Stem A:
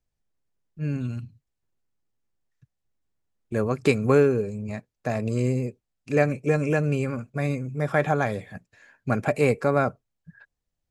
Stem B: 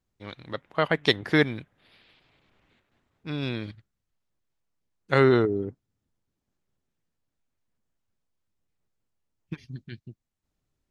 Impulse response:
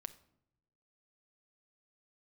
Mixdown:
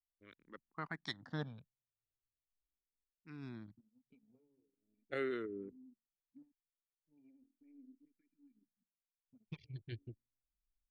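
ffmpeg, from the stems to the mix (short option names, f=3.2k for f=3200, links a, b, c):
-filter_complex "[0:a]bandreject=f=45.82:t=h:w=4,bandreject=f=91.64:t=h:w=4,bandreject=f=137.46:t=h:w=4,bandreject=f=183.28:t=h:w=4,bandreject=f=229.1:t=h:w=4,bandreject=f=274.92:t=h:w=4,acompressor=threshold=-27dB:ratio=8,asplit=3[a][b][c];[a]bandpass=f=270:t=q:w=8,volume=0dB[d];[b]bandpass=f=2.29k:t=q:w=8,volume=-6dB[e];[c]bandpass=f=3.01k:t=q:w=8,volume=-9dB[f];[d][e][f]amix=inputs=3:normalize=0,adelay=250,volume=-16dB,asplit=3[g][h][i];[g]atrim=end=6.52,asetpts=PTS-STARTPTS,afade=t=out:st=6.516:d=0.004:c=hsin[j];[h]atrim=start=6.52:end=7.07,asetpts=PTS-STARTPTS,volume=0[k];[i]atrim=start=7.07,asetpts=PTS-STARTPTS,afade=t=in:d=0.004:c=hsin[l];[j][k][l]concat=n=3:v=0:a=1[m];[1:a]volume=-2dB,afade=t=in:st=9.09:d=0.78:silence=0.223872,asplit=3[n][o][p];[o]volume=-11.5dB[q];[p]apad=whole_len=492132[r];[m][r]sidechaincompress=threshold=-45dB:ratio=8:attack=16:release=353[s];[2:a]atrim=start_sample=2205[t];[q][t]afir=irnorm=-1:irlink=0[u];[s][n][u]amix=inputs=3:normalize=0,anlmdn=0.000631,acrossover=split=1300[v][w];[v]aeval=exprs='val(0)*(1-0.5/2+0.5/2*cos(2*PI*1.4*n/s))':c=same[x];[w]aeval=exprs='val(0)*(1-0.5/2-0.5/2*cos(2*PI*1.4*n/s))':c=same[y];[x][y]amix=inputs=2:normalize=0,asplit=2[z][aa];[aa]afreqshift=-0.39[ab];[z][ab]amix=inputs=2:normalize=1"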